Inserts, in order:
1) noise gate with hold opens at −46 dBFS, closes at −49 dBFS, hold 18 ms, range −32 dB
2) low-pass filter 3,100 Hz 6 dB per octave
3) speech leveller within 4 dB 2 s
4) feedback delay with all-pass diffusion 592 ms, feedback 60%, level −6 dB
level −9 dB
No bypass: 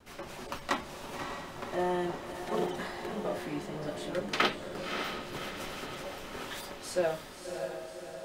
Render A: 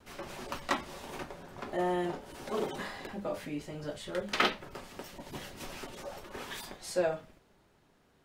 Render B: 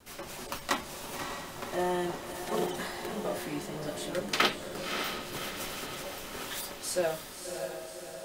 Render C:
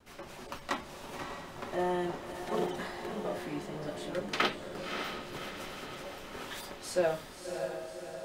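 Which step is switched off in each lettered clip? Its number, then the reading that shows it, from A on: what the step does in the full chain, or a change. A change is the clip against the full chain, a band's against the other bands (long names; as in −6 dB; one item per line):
4, echo-to-direct ratio −4.0 dB to none audible
2, 8 kHz band +7.5 dB
3, change in integrated loudness −1.0 LU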